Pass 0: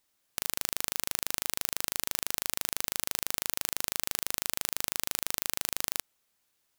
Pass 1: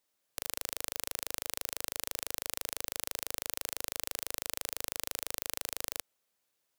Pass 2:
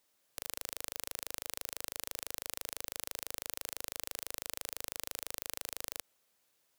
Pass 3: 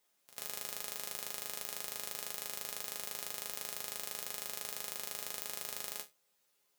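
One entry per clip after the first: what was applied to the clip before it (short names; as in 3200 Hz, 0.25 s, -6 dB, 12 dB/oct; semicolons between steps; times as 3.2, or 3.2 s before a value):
HPF 75 Hz 6 dB/oct; bell 530 Hz +5.5 dB 0.74 oct; gain -5 dB
limiter -15.5 dBFS, peak gain reduction 9 dB; gain +5 dB
resonator bank C#3 major, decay 0.21 s; pre-echo 93 ms -16 dB; gain +11.5 dB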